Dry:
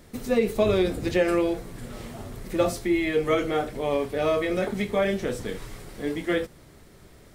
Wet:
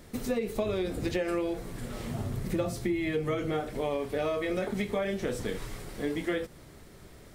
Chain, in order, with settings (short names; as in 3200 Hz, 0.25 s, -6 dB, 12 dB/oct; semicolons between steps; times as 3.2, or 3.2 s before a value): 2.07–3.6 bell 130 Hz +9.5 dB 1.6 oct; compressor 6:1, threshold -27 dBFS, peak gain reduction 11.5 dB